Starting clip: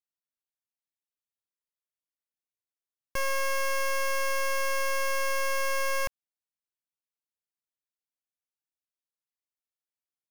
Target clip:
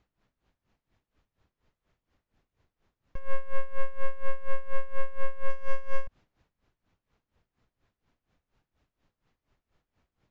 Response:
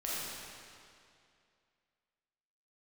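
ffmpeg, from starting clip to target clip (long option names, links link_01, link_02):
-filter_complex "[0:a]aeval=exprs='val(0)+0.5*0.00501*sgn(val(0))':channel_layout=same,aemphasis=mode=reproduction:type=riaa,agate=range=-6dB:threshold=-55dB:ratio=16:detection=peak,highshelf=frequency=3900:gain=-10,asettb=1/sr,asplit=3[link_01][link_02][link_03];[link_01]atrim=end=3.194[link_04];[link_02]atrim=start=3.19:end=5.5,asetpts=PTS-STARTPTS,afade=type=in:duration=0.004:curve=qsin,afade=type=out:start_time=2.306:duration=0.004:curve=qsin,adynamicsmooth=sensitivity=1.5:basefreq=3700[link_05];[link_03]atrim=start=5.496[link_06];[link_04][link_05]acrossfade=duration=0.004:curve1=hsin:curve2=qsin[link_07];[link_07][link_06]acrossfade=duration=0.004:curve1=qsin:curve2=hsin,aresample=16000,aresample=44100,aeval=exprs='val(0)*pow(10,-18*(0.5-0.5*cos(2*PI*4.2*n/s))/20)':channel_layout=same,volume=-3.5dB"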